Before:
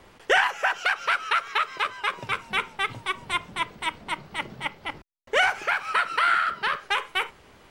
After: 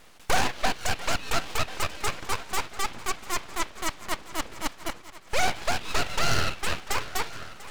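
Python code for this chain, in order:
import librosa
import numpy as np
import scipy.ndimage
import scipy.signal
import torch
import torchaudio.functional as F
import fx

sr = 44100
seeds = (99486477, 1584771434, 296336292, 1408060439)

p1 = fx.tracing_dist(x, sr, depth_ms=0.41)
p2 = fx.env_lowpass_down(p1, sr, base_hz=2700.0, full_db=-21.0)
p3 = fx.high_shelf(p2, sr, hz=4800.0, db=8.5)
p4 = p3 + fx.echo_heads(p3, sr, ms=346, heads='second and third', feedback_pct=48, wet_db=-18.0, dry=0)
y = np.abs(p4)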